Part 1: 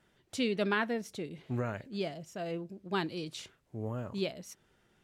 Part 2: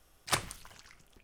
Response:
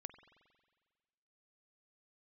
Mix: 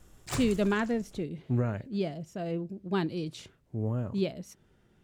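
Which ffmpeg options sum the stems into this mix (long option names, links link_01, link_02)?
-filter_complex "[0:a]volume=-2.5dB[link_01];[1:a]equalizer=frequency=7300:width_type=o:width=0.26:gain=11.5,asoftclip=type=tanh:threshold=-30.5dB,volume=-1dB,asplit=2[link_02][link_03];[link_03]volume=-16.5dB,aecho=0:1:82:1[link_04];[link_01][link_02][link_04]amix=inputs=3:normalize=0,lowshelf=frequency=450:gain=11"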